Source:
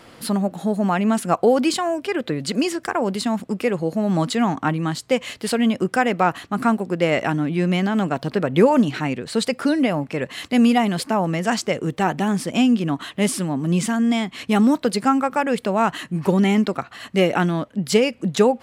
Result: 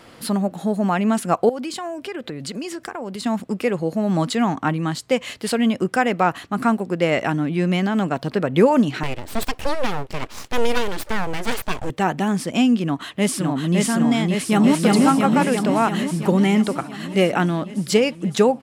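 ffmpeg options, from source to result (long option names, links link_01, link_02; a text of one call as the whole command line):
ffmpeg -i in.wav -filter_complex "[0:a]asettb=1/sr,asplit=3[link_01][link_02][link_03];[link_01]atrim=end=1.494[link_04];[link_02]atrim=start=1.49:end=3.24,asetpts=PTS-STARTPTS,afade=type=in:duration=0.004:curve=qsin,afade=type=out:start_time=1.746:duration=0.004:curve=qsin,acompressor=threshold=-27dB:ratio=4:attack=3.2:release=140:knee=1:detection=peak[link_05];[link_03]atrim=start=3.236[link_06];[link_04][link_05]acrossfade=duration=0.004:curve1=hsin:curve2=qsin[link_07];[link_07][link_06]acrossfade=duration=0.004:curve1=qsin:curve2=hsin,asettb=1/sr,asplit=3[link_08][link_09][link_10];[link_08]atrim=end=9.034[link_11];[link_09]atrim=start=9.03:end=11.9,asetpts=PTS-STARTPTS,afade=type=in:duration=0.004:curve=qsin,afade=type=out:start_time=2.866:duration=0.004:curve=qsin,aeval=exprs='abs(val(0))':channel_layout=same[link_12];[link_10]atrim=start=11.896[link_13];[link_11][link_12]acrossfade=duration=0.004:curve1=hsin:curve2=qsin[link_14];[link_14][link_13]acrossfade=duration=0.004:curve1=qsin:curve2=hsin,asplit=2[link_15][link_16];[link_16]afade=type=in:start_time=12.84:duration=0.01,afade=type=out:start_time=13.78:duration=0.01,aecho=0:1:560|1120|1680|2240|2800|3360|3920|4480|5040|5600|6160|6720:0.794328|0.595746|0.44681|0.335107|0.25133|0.188498|0.141373|0.10603|0.0795225|0.0596419|0.0447314|0.0335486[link_17];[link_15][link_17]amix=inputs=2:normalize=0,asplit=2[link_18][link_19];[link_19]afade=type=in:start_time=14.29:duration=0.01,afade=type=out:start_time=14.8:duration=0.01,aecho=0:1:340|680|1020|1360|1700|2040|2380|2720|3060|3400|3740|4080:0.891251|0.623876|0.436713|0.305699|0.213989|0.149793|0.104855|0.0733983|0.0513788|0.0359652|0.0251756|0.0176229[link_20];[link_18][link_20]amix=inputs=2:normalize=0" out.wav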